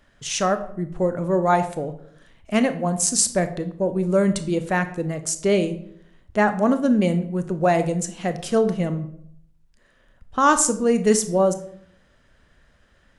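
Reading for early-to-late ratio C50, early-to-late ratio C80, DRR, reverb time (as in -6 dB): 13.0 dB, 16.0 dB, 9.5 dB, 0.65 s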